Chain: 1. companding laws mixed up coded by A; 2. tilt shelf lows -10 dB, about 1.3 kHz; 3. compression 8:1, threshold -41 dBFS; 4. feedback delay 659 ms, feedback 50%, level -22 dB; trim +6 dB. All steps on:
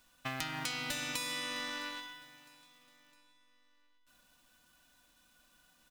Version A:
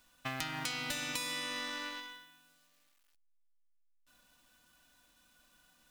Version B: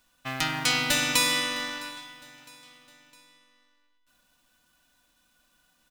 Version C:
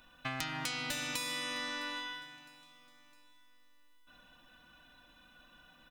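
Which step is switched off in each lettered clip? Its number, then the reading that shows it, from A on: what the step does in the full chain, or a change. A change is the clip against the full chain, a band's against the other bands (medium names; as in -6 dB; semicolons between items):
4, echo-to-direct -21.0 dB to none; 3, momentary loudness spread change +5 LU; 1, distortion -20 dB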